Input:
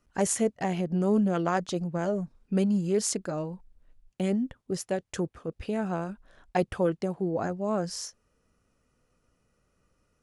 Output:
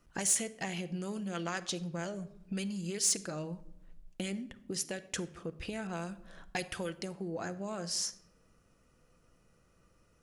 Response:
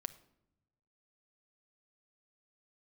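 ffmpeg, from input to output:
-filter_complex "[0:a]acrossover=split=1900[link_01][link_02];[link_01]acompressor=threshold=-41dB:ratio=6[link_03];[link_03][link_02]amix=inputs=2:normalize=0[link_04];[1:a]atrim=start_sample=2205[link_05];[link_04][link_05]afir=irnorm=-1:irlink=0,asoftclip=type=tanh:threshold=-24.5dB,asettb=1/sr,asplit=3[link_06][link_07][link_08];[link_06]atrim=end=5.874[link_09];[link_07]atrim=start=5.87:end=7.05,asetpts=PTS-STARTPTS,afade=type=in:duration=0.004:curve=qsin,afade=type=out:start_time=1.176:duration=0.004:curve=qsin,adynamicequalizer=threshold=0.00141:dfrequency=3100:dqfactor=0.7:tfrequency=3100:tqfactor=0.7:attack=5:release=100:ratio=0.375:range=2:mode=boostabove:tftype=highshelf[link_10];[link_08]atrim=start=7.046[link_11];[link_09][link_10]acrossfade=duration=0.004:curve1=hsin:curve2=qsin[link_12];[link_12][link_11]acrossfade=duration=0.004:curve1=qsin:curve2=hsin,volume=6dB"

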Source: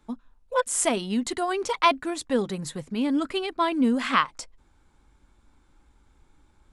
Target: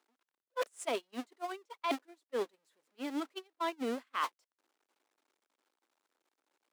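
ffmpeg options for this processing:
ffmpeg -i in.wav -af "aeval=exprs='val(0)+0.5*0.0501*sgn(val(0))':channel_layout=same,agate=range=-43dB:threshold=-20dB:ratio=16:detection=peak,highpass=frequency=330:width=0.5412,highpass=frequency=330:width=1.3066,highshelf=frequency=10000:gain=-6.5,areverse,acompressor=threshold=-31dB:ratio=12,areverse" out.wav

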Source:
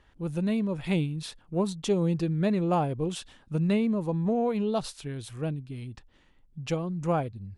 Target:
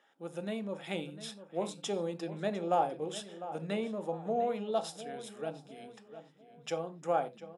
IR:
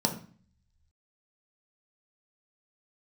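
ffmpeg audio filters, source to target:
-filter_complex "[0:a]highpass=570,asplit=2[link_01][link_02];[link_02]adelay=702,lowpass=frequency=2900:poles=1,volume=-13dB,asplit=2[link_03][link_04];[link_04]adelay=702,lowpass=frequency=2900:poles=1,volume=0.43,asplit=2[link_05][link_06];[link_06]adelay=702,lowpass=frequency=2900:poles=1,volume=0.43,asplit=2[link_07][link_08];[link_08]adelay=702,lowpass=frequency=2900:poles=1,volume=0.43[link_09];[link_01][link_03][link_05][link_07][link_09]amix=inputs=5:normalize=0,asplit=2[link_10][link_11];[1:a]atrim=start_sample=2205,atrim=end_sample=3969,asetrate=39690,aresample=44100[link_12];[link_11][link_12]afir=irnorm=-1:irlink=0,volume=-10.5dB[link_13];[link_10][link_13]amix=inputs=2:normalize=0,volume=-6dB"

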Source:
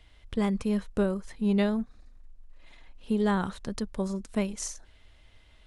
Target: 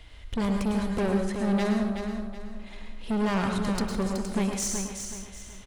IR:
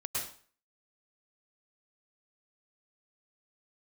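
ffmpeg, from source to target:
-filter_complex "[0:a]asoftclip=type=tanh:threshold=-32dB,aecho=1:1:374|748|1122|1496:0.447|0.156|0.0547|0.0192,asplit=2[link_01][link_02];[1:a]atrim=start_sample=2205[link_03];[link_02][link_03]afir=irnorm=-1:irlink=0,volume=-3.5dB[link_04];[link_01][link_04]amix=inputs=2:normalize=0,volume=4.5dB"

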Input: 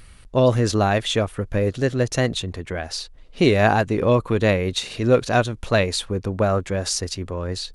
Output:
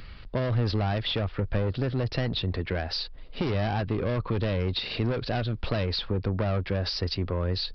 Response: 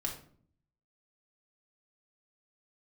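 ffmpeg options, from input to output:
-filter_complex "[0:a]aresample=11025,asoftclip=type=tanh:threshold=-21dB,aresample=44100,acrossover=split=130[link_01][link_02];[link_02]acompressor=threshold=-30dB:ratio=6[link_03];[link_01][link_03]amix=inputs=2:normalize=0,volume=3dB"

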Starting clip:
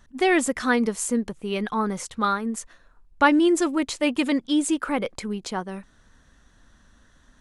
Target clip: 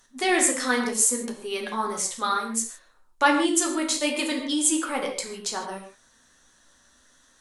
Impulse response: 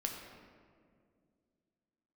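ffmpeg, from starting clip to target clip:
-filter_complex "[0:a]bass=frequency=250:gain=-13,treble=frequency=4000:gain=12[link_01];[1:a]atrim=start_sample=2205,atrim=end_sample=6174,asetrate=37044,aresample=44100[link_02];[link_01][link_02]afir=irnorm=-1:irlink=0,flanger=delay=7.5:depth=8.6:regen=-42:speed=0.66:shape=sinusoidal,volume=1.5dB"

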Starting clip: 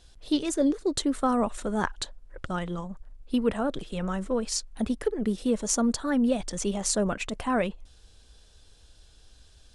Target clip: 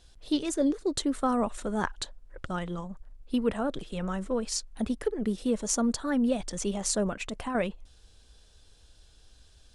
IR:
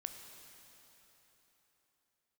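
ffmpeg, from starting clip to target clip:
-filter_complex "[0:a]asettb=1/sr,asplit=3[link_01][link_02][link_03];[link_01]atrim=end=7.094[link_04];[link_02]atrim=start=7.09:end=7.55,asetpts=PTS-STARTPTS,afade=type=in:duration=0.004:curve=qsin,afade=type=out:start_time=0.456:duration=0.004:curve=qsin,acompressor=threshold=-28dB:ratio=6[link_05];[link_03]atrim=start=7.546[link_06];[link_04][link_05]acrossfade=duration=0.004:curve1=hsin:curve2=qsin[link_07];[link_07][link_06]acrossfade=duration=0.004:curve1=qsin:curve2=hsin,volume=-2dB"

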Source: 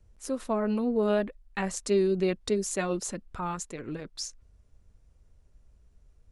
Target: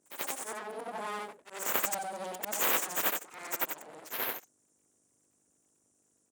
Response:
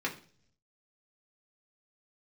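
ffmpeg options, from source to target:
-filter_complex "[0:a]afftfilt=real='re':imag='-im':win_size=8192:overlap=0.75,aeval=exprs='val(0)+0.000891*(sin(2*PI*50*n/s)+sin(2*PI*2*50*n/s)/2+sin(2*PI*3*50*n/s)/3+sin(2*PI*4*50*n/s)/4+sin(2*PI*5*50*n/s)/5)':channel_layout=same,lowpass=frequency=8400:width=0.5412,lowpass=frequency=8400:width=1.3066,equalizer=frequency=2400:width=2.2:gain=-8.5,asplit=2[link_01][link_02];[link_02]adelay=110,highpass=300,lowpass=3400,asoftclip=type=hard:threshold=-28dB,volume=-25dB[link_03];[link_01][link_03]amix=inputs=2:normalize=0,asoftclip=type=tanh:threshold=-21dB,aexciter=amount=14.5:drive=7.1:freq=6600,aeval=exprs='abs(val(0))':channel_layout=same,highpass=370"

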